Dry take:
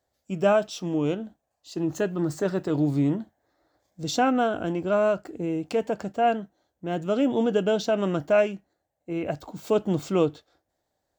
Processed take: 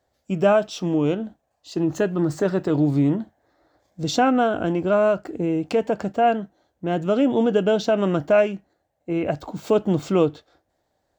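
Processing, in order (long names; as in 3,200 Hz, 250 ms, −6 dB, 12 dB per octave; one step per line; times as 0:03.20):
high-shelf EQ 5,700 Hz −8 dB
in parallel at −1.5 dB: downward compressor, threshold −28 dBFS, peak gain reduction 11.5 dB
on the sum: level +1.5 dB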